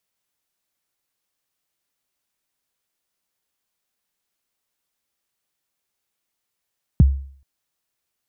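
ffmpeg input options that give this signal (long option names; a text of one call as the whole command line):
ffmpeg -f lavfi -i "aevalsrc='0.531*pow(10,-3*t/0.52)*sin(2*PI*(210*0.021/log(68/210)*(exp(log(68/210)*min(t,0.021)/0.021)-1)+68*max(t-0.021,0)))':duration=0.43:sample_rate=44100" out.wav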